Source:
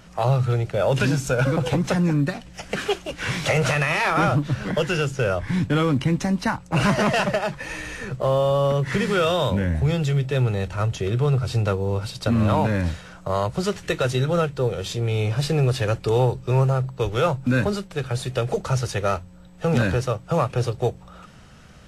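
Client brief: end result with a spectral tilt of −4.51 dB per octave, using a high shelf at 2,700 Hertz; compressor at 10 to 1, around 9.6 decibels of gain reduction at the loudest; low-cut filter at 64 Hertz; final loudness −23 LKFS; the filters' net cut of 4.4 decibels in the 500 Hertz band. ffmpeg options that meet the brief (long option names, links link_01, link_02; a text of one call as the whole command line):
ffmpeg -i in.wav -af "highpass=64,equalizer=frequency=500:width_type=o:gain=-5.5,highshelf=frequency=2700:gain=8,acompressor=threshold=-26dB:ratio=10,volume=7.5dB" out.wav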